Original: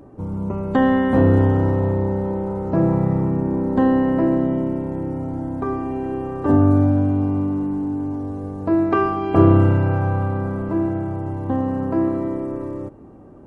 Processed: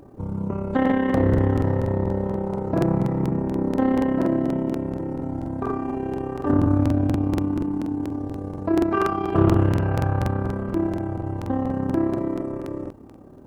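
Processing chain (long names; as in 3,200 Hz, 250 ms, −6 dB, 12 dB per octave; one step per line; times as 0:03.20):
in parallel at −2 dB: brickwall limiter −13 dBFS, peak gain reduction 11 dB
on the sum: bit reduction 11 bits
amplitude modulation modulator 34 Hz, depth 45%
regular buffer underruns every 0.24 s, samples 2,048, repeat, from 0:00.81
highs frequency-modulated by the lows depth 0.24 ms
level −4.5 dB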